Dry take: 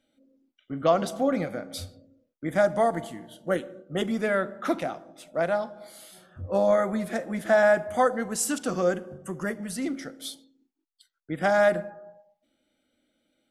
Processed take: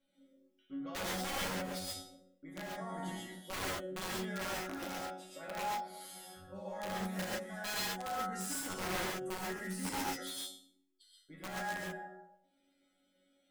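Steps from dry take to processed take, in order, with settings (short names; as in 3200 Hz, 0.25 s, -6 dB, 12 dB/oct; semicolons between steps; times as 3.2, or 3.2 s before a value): reverse; compressor 6:1, threshold -33 dBFS, peak gain reduction 16.5 dB; reverse; resonator bank F#3 fifth, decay 0.46 s; wrapped overs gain 46.5 dB; non-linear reverb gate 0.16 s rising, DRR -3.5 dB; gain +10.5 dB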